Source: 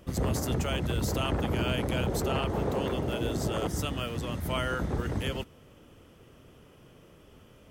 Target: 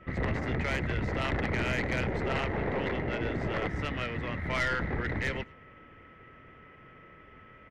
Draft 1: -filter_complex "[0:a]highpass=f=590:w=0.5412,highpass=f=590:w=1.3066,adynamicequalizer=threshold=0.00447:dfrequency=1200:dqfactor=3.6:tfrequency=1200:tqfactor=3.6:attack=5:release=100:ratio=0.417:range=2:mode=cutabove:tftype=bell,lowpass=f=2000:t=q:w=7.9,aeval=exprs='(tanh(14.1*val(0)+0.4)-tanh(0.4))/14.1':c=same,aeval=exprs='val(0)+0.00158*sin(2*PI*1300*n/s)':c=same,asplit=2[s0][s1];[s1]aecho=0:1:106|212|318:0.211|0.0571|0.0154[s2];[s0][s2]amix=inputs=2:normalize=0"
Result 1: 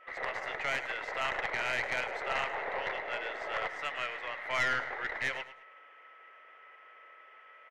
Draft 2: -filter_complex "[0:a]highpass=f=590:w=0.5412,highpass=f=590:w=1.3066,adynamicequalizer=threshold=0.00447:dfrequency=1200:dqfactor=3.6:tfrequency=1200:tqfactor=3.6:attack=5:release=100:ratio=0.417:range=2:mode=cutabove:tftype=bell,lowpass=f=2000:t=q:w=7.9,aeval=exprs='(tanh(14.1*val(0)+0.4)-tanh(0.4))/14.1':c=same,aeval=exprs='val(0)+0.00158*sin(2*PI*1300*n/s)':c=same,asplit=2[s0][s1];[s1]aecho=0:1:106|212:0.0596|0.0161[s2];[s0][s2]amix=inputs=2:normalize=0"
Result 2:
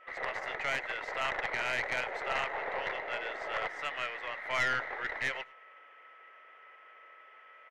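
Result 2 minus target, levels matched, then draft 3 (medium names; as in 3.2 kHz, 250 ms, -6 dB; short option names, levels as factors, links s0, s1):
500 Hz band -3.0 dB
-filter_complex "[0:a]adynamicequalizer=threshold=0.00447:dfrequency=1200:dqfactor=3.6:tfrequency=1200:tqfactor=3.6:attack=5:release=100:ratio=0.417:range=2:mode=cutabove:tftype=bell,lowpass=f=2000:t=q:w=7.9,aeval=exprs='(tanh(14.1*val(0)+0.4)-tanh(0.4))/14.1':c=same,aeval=exprs='val(0)+0.00158*sin(2*PI*1300*n/s)':c=same,asplit=2[s0][s1];[s1]aecho=0:1:106|212:0.0596|0.0161[s2];[s0][s2]amix=inputs=2:normalize=0"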